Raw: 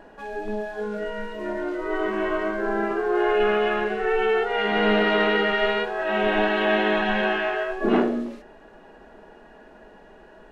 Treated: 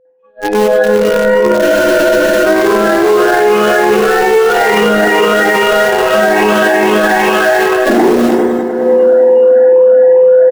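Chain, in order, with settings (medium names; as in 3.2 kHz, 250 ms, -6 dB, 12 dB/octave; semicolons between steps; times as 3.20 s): drifting ripple filter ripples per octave 0.79, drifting +2.4 Hz, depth 12 dB; three-band isolator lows -17 dB, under 160 Hz, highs -21 dB, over 3.6 kHz; bands offset in time highs, lows 50 ms, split 2.7 kHz; in parallel at -8 dB: bit crusher 4-bit; on the sum: whistle 510 Hz -23 dBFS; multi-head delay 101 ms, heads first and third, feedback 58%, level -13 dB; level rider gain up to 12.5 dB; spectral noise reduction 10 dB; expander -19 dBFS; spectral freeze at 1.64 s, 0.81 s; loudness maximiser +15.5 dB; trim -1 dB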